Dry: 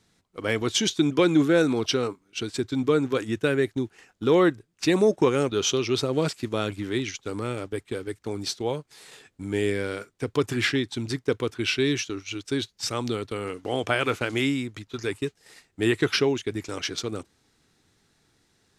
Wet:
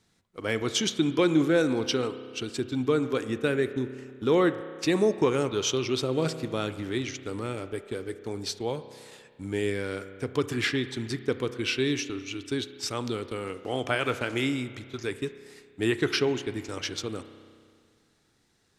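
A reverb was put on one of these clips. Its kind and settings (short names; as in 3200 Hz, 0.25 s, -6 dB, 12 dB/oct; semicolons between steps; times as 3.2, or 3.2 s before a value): spring tank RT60 2 s, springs 31 ms, chirp 40 ms, DRR 11.5 dB; gain -3 dB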